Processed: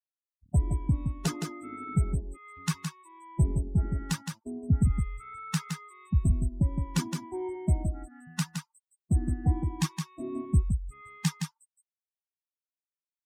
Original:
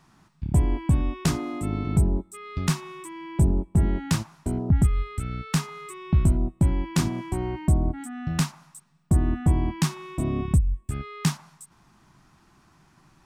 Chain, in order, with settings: expander on every frequency bin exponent 3; delay 166 ms -6 dB

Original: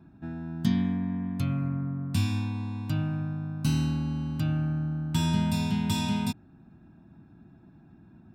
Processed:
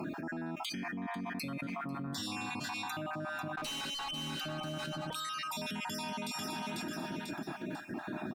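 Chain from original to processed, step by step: random holes in the spectrogram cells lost 47%; high-pass 380 Hz 12 dB/octave; peak limiter -35.5 dBFS, peak gain reduction 11.5 dB; 3.57–4.11 s: overdrive pedal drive 32 dB, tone 4.7 kHz, clips at -14.5 dBFS; feedback comb 610 Hz, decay 0.4 s, mix 80%; one-sided clip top -45.5 dBFS; 2.03–2.54 s: doubling 35 ms -3.5 dB; 5.10–5.51 s: frequency shift +330 Hz; feedback delay 494 ms, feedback 37%, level -18.5 dB; level flattener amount 100%

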